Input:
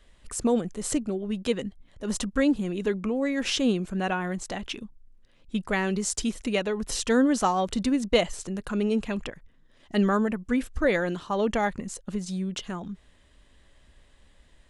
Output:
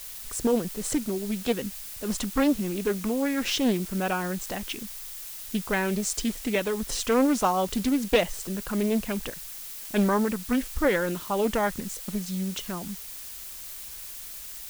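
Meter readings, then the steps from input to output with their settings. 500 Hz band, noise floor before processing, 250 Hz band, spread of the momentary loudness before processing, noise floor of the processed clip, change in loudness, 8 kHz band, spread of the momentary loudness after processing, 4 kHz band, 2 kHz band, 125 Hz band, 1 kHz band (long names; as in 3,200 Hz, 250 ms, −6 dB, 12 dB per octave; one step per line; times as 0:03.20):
0.0 dB, −59 dBFS, −0.5 dB, 11 LU, −40 dBFS, −0.5 dB, +2.0 dB, 12 LU, 0.0 dB, 0.0 dB, −0.5 dB, +0.5 dB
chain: background noise blue −39 dBFS
highs frequency-modulated by the lows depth 0.44 ms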